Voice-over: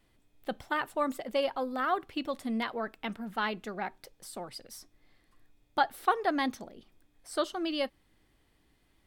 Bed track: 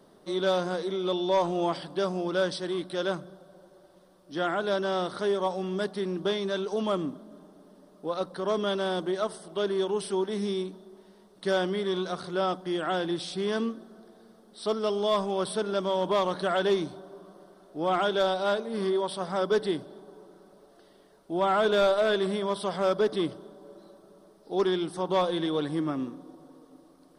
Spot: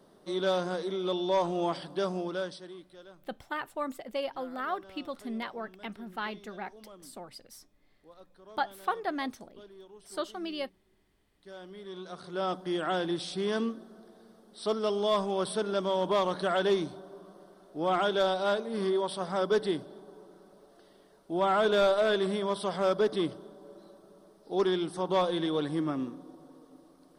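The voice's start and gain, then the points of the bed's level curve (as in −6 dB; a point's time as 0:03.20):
2.80 s, −4.0 dB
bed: 0:02.18 −2.5 dB
0:03.10 −23.5 dB
0:11.39 −23.5 dB
0:12.58 −1.5 dB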